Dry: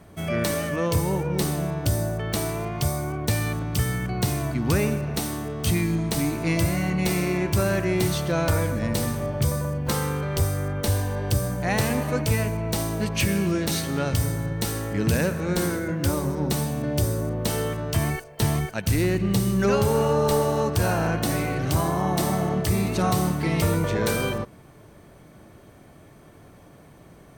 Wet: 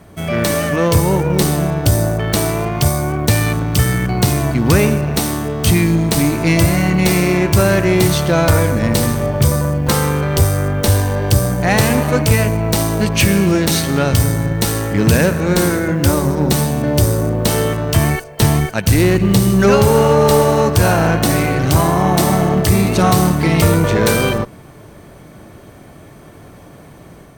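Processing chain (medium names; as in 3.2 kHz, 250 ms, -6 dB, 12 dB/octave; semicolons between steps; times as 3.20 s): Chebyshev shaper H 6 -25 dB, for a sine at -13 dBFS; companded quantiser 8-bit; level rider gain up to 3.5 dB; trim +6.5 dB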